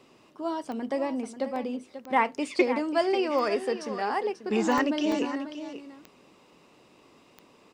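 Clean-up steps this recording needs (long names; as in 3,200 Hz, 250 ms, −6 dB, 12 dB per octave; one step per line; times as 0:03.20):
click removal
repair the gap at 0:00.65/0:01.56/0:04.78/0:05.12, 1.7 ms
echo removal 539 ms −11.5 dB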